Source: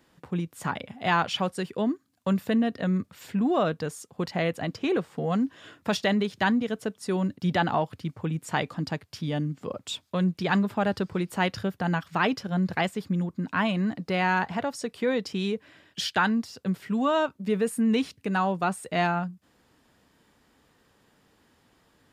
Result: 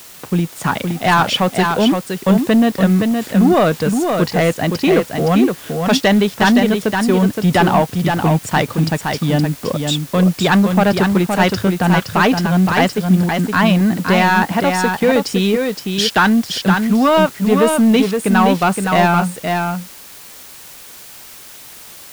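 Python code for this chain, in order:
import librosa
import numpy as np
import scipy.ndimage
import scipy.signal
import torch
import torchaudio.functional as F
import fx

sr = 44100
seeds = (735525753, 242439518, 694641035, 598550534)

p1 = fx.leveller(x, sr, passes=2)
p2 = fx.quant_dither(p1, sr, seeds[0], bits=6, dither='triangular')
p3 = p1 + (p2 * 10.0 ** (-3.5 / 20.0))
p4 = p3 + 10.0 ** (-5.0 / 20.0) * np.pad(p3, (int(518 * sr / 1000.0), 0))[:len(p3)]
y = p4 * 10.0 ** (1.0 / 20.0)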